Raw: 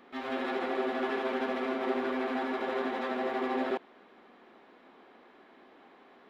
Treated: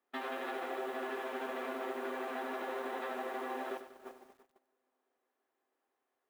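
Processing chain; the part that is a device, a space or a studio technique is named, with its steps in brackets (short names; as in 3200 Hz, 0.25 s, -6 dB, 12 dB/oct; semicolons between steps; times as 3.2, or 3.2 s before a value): HPF 190 Hz 6 dB/oct; notch 2200 Hz, Q 22; tape echo 0.337 s, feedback 79%, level -16 dB, low-pass 1300 Hz; baby monitor (BPF 330–3700 Hz; compressor 8:1, threshold -43 dBFS, peak gain reduction 15 dB; white noise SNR 22 dB; gate -48 dBFS, range -33 dB); lo-fi delay 96 ms, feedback 55%, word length 11-bit, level -11 dB; gain +6 dB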